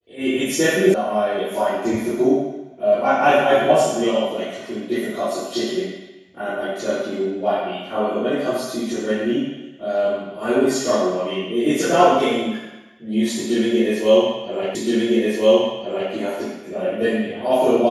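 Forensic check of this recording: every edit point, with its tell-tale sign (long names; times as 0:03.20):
0:00.94: cut off before it has died away
0:14.75: the same again, the last 1.37 s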